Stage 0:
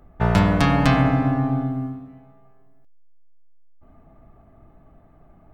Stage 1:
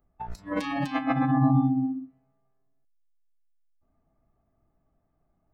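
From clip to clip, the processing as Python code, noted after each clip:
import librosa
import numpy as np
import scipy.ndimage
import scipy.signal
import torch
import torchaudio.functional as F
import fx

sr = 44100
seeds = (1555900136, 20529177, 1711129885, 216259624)

y = fx.over_compress(x, sr, threshold_db=-21.0, ratio=-0.5)
y = fx.noise_reduce_blind(y, sr, reduce_db=24)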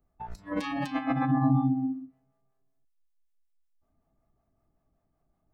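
y = fx.harmonic_tremolo(x, sr, hz=5.3, depth_pct=50, crossover_hz=440.0)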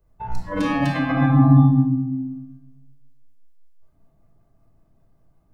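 y = fx.room_shoebox(x, sr, seeds[0], volume_m3=2600.0, walls='furnished', distance_m=5.0)
y = y * 10.0 ** (4.5 / 20.0)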